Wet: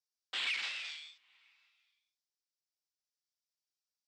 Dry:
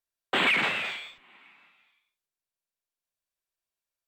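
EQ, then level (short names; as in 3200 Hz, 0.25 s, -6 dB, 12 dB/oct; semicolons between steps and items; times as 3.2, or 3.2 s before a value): band-pass 5200 Hz, Q 3.6; +4.5 dB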